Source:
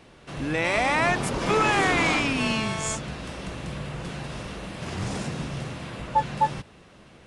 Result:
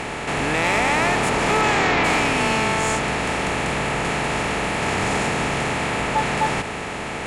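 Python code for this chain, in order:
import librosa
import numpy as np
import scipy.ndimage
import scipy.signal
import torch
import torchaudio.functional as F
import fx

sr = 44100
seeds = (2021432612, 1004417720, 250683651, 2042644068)

p1 = fx.bin_compress(x, sr, power=0.4)
p2 = fx.lowpass(p1, sr, hz=fx.line((1.61, 10000.0), (2.03, 5000.0)), slope=24, at=(1.61, 2.03), fade=0.02)
p3 = fx.fold_sine(p2, sr, drive_db=7, ceiling_db=-4.0)
p4 = p2 + (p3 * 10.0 ** (-8.5 / 20.0))
y = p4 * 10.0 ** (-8.0 / 20.0)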